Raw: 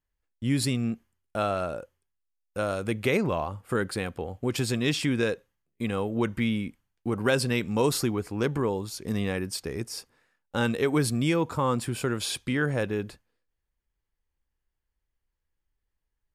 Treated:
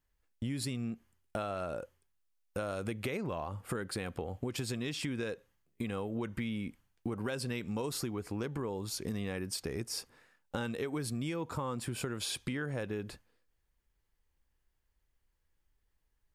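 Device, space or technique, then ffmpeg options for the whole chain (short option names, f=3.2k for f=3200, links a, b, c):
serial compression, peaks first: -af "acompressor=threshold=-34dB:ratio=5,acompressor=threshold=-44dB:ratio=1.5,volume=4dB"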